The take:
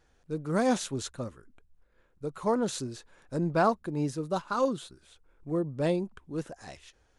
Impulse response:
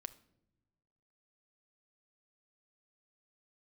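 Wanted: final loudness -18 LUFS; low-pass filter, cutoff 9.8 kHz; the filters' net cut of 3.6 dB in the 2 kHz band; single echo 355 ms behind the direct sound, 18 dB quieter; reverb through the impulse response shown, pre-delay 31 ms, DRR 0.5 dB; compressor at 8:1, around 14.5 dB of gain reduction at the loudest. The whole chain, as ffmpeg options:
-filter_complex "[0:a]lowpass=9800,equalizer=f=2000:t=o:g=-5.5,acompressor=threshold=0.0158:ratio=8,aecho=1:1:355:0.126,asplit=2[s0][s1];[1:a]atrim=start_sample=2205,adelay=31[s2];[s1][s2]afir=irnorm=-1:irlink=0,volume=1.58[s3];[s0][s3]amix=inputs=2:normalize=0,volume=11.2"

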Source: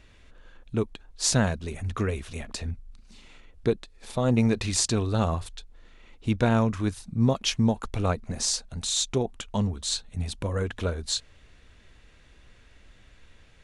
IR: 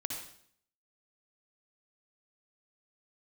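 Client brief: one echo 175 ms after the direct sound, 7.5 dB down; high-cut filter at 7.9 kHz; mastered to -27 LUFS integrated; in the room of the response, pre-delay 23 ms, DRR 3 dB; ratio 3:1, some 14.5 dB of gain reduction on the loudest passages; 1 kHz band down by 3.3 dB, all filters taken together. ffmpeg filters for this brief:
-filter_complex "[0:a]lowpass=7900,equalizer=f=1000:t=o:g=-4.5,acompressor=threshold=0.0126:ratio=3,aecho=1:1:175:0.422,asplit=2[s0][s1];[1:a]atrim=start_sample=2205,adelay=23[s2];[s1][s2]afir=irnorm=-1:irlink=0,volume=0.596[s3];[s0][s3]amix=inputs=2:normalize=0,volume=2.99"

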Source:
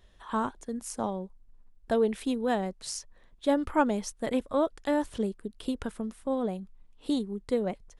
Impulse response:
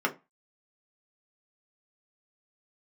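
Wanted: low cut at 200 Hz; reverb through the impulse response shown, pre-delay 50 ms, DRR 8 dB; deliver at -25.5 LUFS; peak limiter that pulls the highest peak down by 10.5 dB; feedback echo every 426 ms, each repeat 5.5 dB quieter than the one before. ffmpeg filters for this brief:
-filter_complex "[0:a]highpass=200,alimiter=limit=0.0841:level=0:latency=1,aecho=1:1:426|852|1278|1704|2130|2556|2982:0.531|0.281|0.149|0.079|0.0419|0.0222|0.0118,asplit=2[s0][s1];[1:a]atrim=start_sample=2205,adelay=50[s2];[s1][s2]afir=irnorm=-1:irlink=0,volume=0.119[s3];[s0][s3]amix=inputs=2:normalize=0,volume=2.24"

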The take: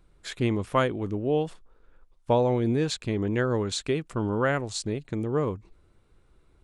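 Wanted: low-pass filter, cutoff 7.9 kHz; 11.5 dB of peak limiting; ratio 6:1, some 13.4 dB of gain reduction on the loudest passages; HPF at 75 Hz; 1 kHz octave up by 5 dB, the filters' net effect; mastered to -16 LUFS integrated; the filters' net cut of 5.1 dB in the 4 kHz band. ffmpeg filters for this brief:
-af "highpass=75,lowpass=7900,equalizer=f=1000:t=o:g=6.5,equalizer=f=4000:t=o:g=-6,acompressor=threshold=0.0355:ratio=6,volume=12.6,alimiter=limit=0.531:level=0:latency=1"

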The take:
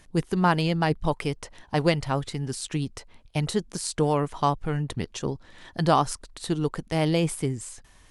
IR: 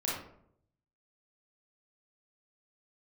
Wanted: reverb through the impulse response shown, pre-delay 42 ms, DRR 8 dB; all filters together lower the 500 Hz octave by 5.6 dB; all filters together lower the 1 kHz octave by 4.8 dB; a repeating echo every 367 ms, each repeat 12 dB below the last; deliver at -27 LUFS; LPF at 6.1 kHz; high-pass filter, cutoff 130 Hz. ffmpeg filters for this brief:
-filter_complex "[0:a]highpass=130,lowpass=6100,equalizer=f=500:t=o:g=-6,equalizer=f=1000:t=o:g=-4,aecho=1:1:367|734|1101:0.251|0.0628|0.0157,asplit=2[s0][s1];[1:a]atrim=start_sample=2205,adelay=42[s2];[s1][s2]afir=irnorm=-1:irlink=0,volume=0.211[s3];[s0][s3]amix=inputs=2:normalize=0,volume=1.26"

